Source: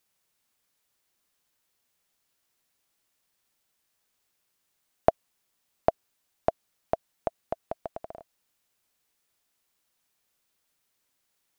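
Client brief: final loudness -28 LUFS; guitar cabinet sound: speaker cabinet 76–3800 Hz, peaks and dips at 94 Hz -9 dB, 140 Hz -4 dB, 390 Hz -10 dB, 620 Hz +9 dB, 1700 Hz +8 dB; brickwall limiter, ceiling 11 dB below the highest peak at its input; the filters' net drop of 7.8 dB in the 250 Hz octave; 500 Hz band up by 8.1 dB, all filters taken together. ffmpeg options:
-af "equalizer=f=250:t=o:g=-9,equalizer=f=500:t=o:g=4,alimiter=limit=-13.5dB:level=0:latency=1,highpass=76,equalizer=f=94:t=q:w=4:g=-9,equalizer=f=140:t=q:w=4:g=-4,equalizer=f=390:t=q:w=4:g=-10,equalizer=f=620:t=q:w=4:g=9,equalizer=f=1.7k:t=q:w=4:g=8,lowpass=f=3.8k:w=0.5412,lowpass=f=3.8k:w=1.3066,volume=4dB"

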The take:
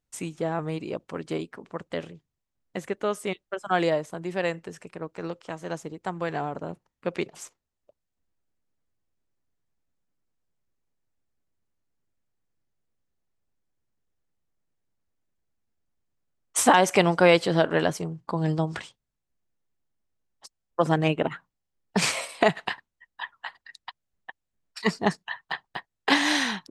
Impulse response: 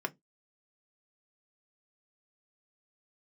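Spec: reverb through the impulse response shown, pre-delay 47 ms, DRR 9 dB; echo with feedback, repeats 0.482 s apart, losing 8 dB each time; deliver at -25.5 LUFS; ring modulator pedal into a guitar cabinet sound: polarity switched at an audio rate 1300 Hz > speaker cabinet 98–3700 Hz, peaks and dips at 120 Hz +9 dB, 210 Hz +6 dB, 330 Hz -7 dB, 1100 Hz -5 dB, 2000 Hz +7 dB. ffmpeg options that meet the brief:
-filter_complex "[0:a]aecho=1:1:482|964|1446|1928|2410:0.398|0.159|0.0637|0.0255|0.0102,asplit=2[a][b];[1:a]atrim=start_sample=2205,adelay=47[c];[b][c]afir=irnorm=-1:irlink=0,volume=-13.5dB[d];[a][d]amix=inputs=2:normalize=0,aeval=exprs='val(0)*sgn(sin(2*PI*1300*n/s))':c=same,highpass=98,equalizer=f=120:t=q:w=4:g=9,equalizer=f=210:t=q:w=4:g=6,equalizer=f=330:t=q:w=4:g=-7,equalizer=f=1.1k:t=q:w=4:g=-5,equalizer=f=2k:t=q:w=4:g=7,lowpass=f=3.7k:w=0.5412,lowpass=f=3.7k:w=1.3066,volume=-2.5dB"

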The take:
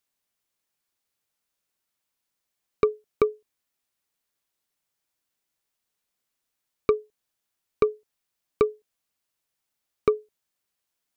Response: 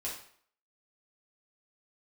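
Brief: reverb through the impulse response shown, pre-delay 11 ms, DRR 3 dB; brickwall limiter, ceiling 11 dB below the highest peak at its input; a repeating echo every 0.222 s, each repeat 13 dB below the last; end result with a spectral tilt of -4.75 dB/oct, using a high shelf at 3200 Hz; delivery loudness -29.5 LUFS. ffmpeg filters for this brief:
-filter_complex "[0:a]highshelf=f=3.2k:g=8,alimiter=limit=-18.5dB:level=0:latency=1,aecho=1:1:222|444|666:0.224|0.0493|0.0108,asplit=2[a][b];[1:a]atrim=start_sample=2205,adelay=11[c];[b][c]afir=irnorm=-1:irlink=0,volume=-4.5dB[d];[a][d]amix=inputs=2:normalize=0,volume=4dB"

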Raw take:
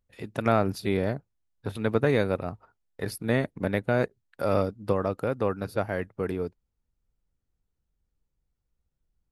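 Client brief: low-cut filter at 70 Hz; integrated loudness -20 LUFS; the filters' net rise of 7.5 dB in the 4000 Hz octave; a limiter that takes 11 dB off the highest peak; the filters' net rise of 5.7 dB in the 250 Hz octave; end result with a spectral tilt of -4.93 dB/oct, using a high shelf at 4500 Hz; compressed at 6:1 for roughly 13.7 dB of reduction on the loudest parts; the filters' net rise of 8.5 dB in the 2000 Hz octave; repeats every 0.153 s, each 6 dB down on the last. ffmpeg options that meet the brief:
-af "highpass=70,equalizer=f=250:t=o:g=7,equalizer=f=2k:t=o:g=9,equalizer=f=4k:t=o:g=4.5,highshelf=f=4.5k:g=3.5,acompressor=threshold=-29dB:ratio=6,alimiter=limit=-24dB:level=0:latency=1,aecho=1:1:153|306|459|612|765|918:0.501|0.251|0.125|0.0626|0.0313|0.0157,volume=17dB"

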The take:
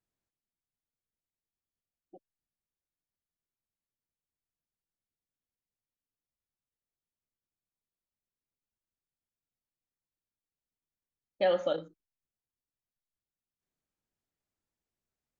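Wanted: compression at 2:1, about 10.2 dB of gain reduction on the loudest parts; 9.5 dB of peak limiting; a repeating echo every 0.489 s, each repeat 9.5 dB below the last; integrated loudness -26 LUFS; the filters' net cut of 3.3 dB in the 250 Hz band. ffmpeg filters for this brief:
-af "equalizer=f=250:t=o:g=-5.5,acompressor=threshold=-43dB:ratio=2,alimiter=level_in=13.5dB:limit=-24dB:level=0:latency=1,volume=-13.5dB,aecho=1:1:489|978|1467|1956:0.335|0.111|0.0365|0.012,volume=25.5dB"

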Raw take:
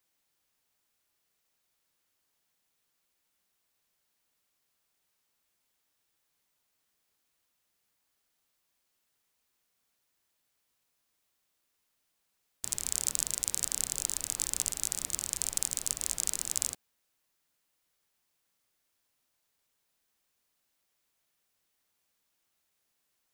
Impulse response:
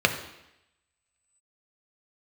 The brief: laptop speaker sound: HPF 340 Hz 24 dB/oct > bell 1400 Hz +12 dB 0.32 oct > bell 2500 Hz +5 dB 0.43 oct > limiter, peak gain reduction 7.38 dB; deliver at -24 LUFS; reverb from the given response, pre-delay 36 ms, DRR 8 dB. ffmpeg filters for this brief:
-filter_complex "[0:a]asplit=2[a][b];[1:a]atrim=start_sample=2205,adelay=36[c];[b][c]afir=irnorm=-1:irlink=0,volume=-24.5dB[d];[a][d]amix=inputs=2:normalize=0,highpass=f=340:w=0.5412,highpass=f=340:w=1.3066,equalizer=f=1.4k:t=o:w=0.32:g=12,equalizer=f=2.5k:t=o:w=0.43:g=5,volume=10.5dB,alimiter=limit=-1dB:level=0:latency=1"

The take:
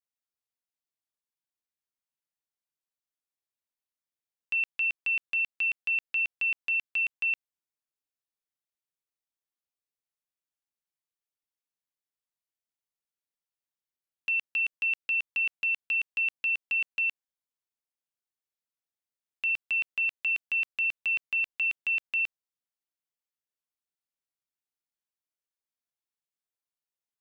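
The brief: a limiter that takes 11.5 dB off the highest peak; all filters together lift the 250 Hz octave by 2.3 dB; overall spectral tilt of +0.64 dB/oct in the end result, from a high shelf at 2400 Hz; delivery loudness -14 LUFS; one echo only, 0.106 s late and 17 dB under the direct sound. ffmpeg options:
-af "equalizer=f=250:t=o:g=3,highshelf=f=2.4k:g=5,alimiter=level_in=8dB:limit=-24dB:level=0:latency=1,volume=-8dB,aecho=1:1:106:0.141,volume=22dB"

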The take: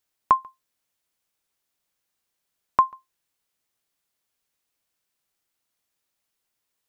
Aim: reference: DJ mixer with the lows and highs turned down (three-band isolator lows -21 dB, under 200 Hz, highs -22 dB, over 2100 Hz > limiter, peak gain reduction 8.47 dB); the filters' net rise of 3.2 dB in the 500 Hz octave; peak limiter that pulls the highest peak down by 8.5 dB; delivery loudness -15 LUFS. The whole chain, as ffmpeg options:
-filter_complex "[0:a]equalizer=f=500:t=o:g=4.5,alimiter=limit=-13dB:level=0:latency=1,acrossover=split=200 2100:gain=0.0891 1 0.0794[a][b][c];[a][b][c]amix=inputs=3:normalize=0,volume=20dB,alimiter=limit=-1.5dB:level=0:latency=1"

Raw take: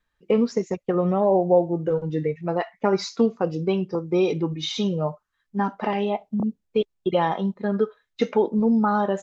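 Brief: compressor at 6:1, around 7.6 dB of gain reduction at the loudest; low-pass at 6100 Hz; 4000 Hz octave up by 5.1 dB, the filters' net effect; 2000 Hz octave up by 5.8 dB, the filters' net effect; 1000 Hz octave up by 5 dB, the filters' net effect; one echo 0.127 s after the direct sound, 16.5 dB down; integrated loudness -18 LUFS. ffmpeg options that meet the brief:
-af "lowpass=6.1k,equalizer=f=1k:t=o:g=5.5,equalizer=f=2k:t=o:g=4.5,equalizer=f=4k:t=o:g=5,acompressor=threshold=-21dB:ratio=6,aecho=1:1:127:0.15,volume=9dB"

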